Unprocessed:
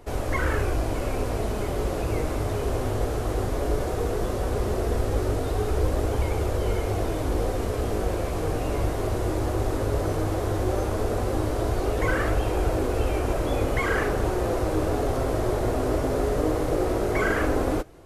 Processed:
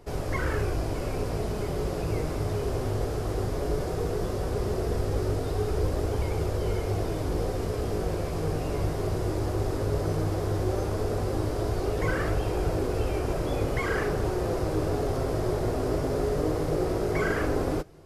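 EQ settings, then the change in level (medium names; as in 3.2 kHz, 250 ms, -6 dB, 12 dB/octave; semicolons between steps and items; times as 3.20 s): graphic EQ with 31 bands 100 Hz +4 dB, 160 Hz +10 dB, 400 Hz +4 dB, 5 kHz +6 dB; -4.5 dB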